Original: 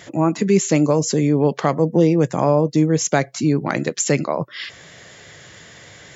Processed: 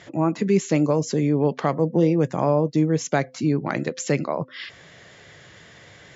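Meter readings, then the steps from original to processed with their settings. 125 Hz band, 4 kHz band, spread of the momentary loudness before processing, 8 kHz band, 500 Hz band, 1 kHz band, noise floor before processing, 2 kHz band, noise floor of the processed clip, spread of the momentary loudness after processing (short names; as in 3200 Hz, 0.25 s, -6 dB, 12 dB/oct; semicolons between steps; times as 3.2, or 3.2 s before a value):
-3.5 dB, -6.5 dB, 8 LU, n/a, -4.0 dB, -4.0 dB, -44 dBFS, -4.5 dB, -48 dBFS, 8 LU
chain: air absorption 87 m; de-hum 257.8 Hz, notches 2; gain -3.5 dB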